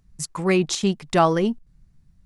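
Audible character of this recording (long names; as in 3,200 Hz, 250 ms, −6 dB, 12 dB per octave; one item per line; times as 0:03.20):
chopped level 1.2 Hz, depth 60%, duty 90%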